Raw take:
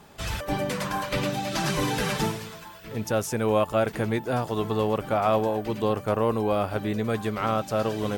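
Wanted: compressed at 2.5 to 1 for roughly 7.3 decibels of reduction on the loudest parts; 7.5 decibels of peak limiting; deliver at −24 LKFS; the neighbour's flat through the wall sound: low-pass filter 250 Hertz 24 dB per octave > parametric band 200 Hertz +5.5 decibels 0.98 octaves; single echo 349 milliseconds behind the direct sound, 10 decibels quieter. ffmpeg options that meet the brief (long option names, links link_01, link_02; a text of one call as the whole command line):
ffmpeg -i in.wav -af "acompressor=threshold=-30dB:ratio=2.5,alimiter=level_in=1dB:limit=-24dB:level=0:latency=1,volume=-1dB,lowpass=frequency=250:width=0.5412,lowpass=frequency=250:width=1.3066,equalizer=frequency=200:width_type=o:width=0.98:gain=5.5,aecho=1:1:349:0.316,volume=13dB" out.wav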